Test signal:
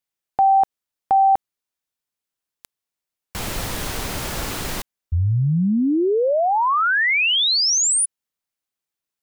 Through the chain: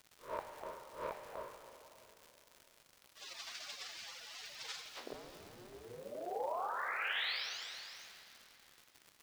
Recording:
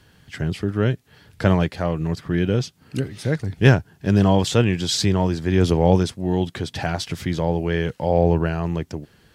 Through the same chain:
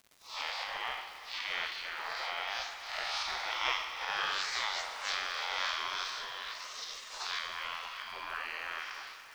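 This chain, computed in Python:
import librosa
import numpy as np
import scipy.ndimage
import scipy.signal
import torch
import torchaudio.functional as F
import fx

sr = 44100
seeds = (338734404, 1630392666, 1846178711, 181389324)

p1 = fx.spec_blur(x, sr, span_ms=205.0)
p2 = fx.recorder_agc(p1, sr, target_db=-14.5, rise_db_per_s=21.0, max_gain_db=25)
p3 = fx.spec_gate(p2, sr, threshold_db=-30, keep='weak')
p4 = scipy.signal.sosfilt(scipy.signal.butter(4, 5000.0, 'lowpass', fs=sr, output='sos'), p3)
p5 = fx.low_shelf_res(p4, sr, hz=350.0, db=-8.5, q=1.5)
p6 = p5 + fx.echo_single(p5, sr, ms=628, db=-22.5, dry=0)
p7 = fx.dmg_crackle(p6, sr, seeds[0], per_s=190.0, level_db=-53.0)
p8 = fx.quant_dither(p7, sr, seeds[1], bits=12, dither='none')
p9 = fx.dynamic_eq(p8, sr, hz=2800.0, q=3.7, threshold_db=-59.0, ratio=4.0, max_db=-5)
p10 = fx.rev_plate(p9, sr, seeds[2], rt60_s=3.2, hf_ratio=0.9, predelay_ms=0, drr_db=6.5)
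y = p10 * 10.0 ** (7.0 / 20.0)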